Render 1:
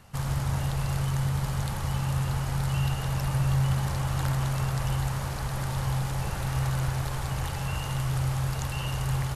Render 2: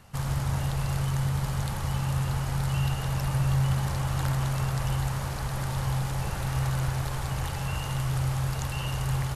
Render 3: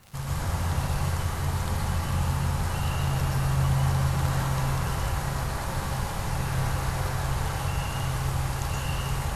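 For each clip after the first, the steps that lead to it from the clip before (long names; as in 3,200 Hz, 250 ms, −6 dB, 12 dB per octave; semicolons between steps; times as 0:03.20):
no processing that can be heard
surface crackle 140 per second −34 dBFS; convolution reverb RT60 1.2 s, pre-delay 113 ms, DRR −4.5 dB; level −3 dB; WMA 64 kbit/s 48,000 Hz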